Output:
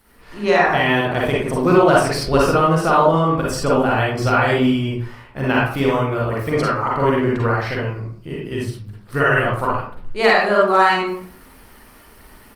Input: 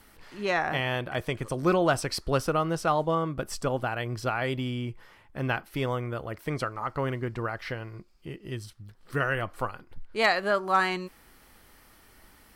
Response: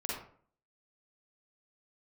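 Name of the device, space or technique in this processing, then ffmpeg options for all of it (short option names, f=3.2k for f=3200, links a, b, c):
speakerphone in a meeting room: -filter_complex "[1:a]atrim=start_sample=2205[a];[0:a][a]afir=irnorm=-1:irlink=0,asplit=2[b][c];[c]adelay=120,highpass=300,lowpass=3.4k,asoftclip=type=hard:threshold=-17dB,volume=-26dB[d];[b][d]amix=inputs=2:normalize=0,dynaudnorm=f=170:g=3:m=8dB,volume=1.5dB" -ar 48000 -c:a libopus -b:a 32k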